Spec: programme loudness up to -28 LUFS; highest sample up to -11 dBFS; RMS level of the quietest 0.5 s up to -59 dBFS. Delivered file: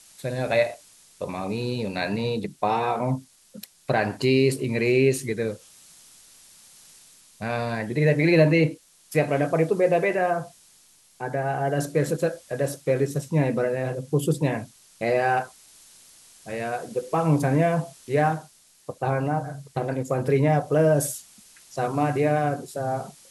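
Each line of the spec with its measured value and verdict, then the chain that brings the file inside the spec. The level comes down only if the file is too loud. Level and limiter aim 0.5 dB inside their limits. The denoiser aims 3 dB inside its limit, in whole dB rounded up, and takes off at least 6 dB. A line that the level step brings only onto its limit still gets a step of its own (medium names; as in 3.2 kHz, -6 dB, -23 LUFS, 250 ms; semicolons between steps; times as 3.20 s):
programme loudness -24.5 LUFS: fail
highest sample -7.5 dBFS: fail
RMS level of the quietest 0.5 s -57 dBFS: fail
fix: trim -4 dB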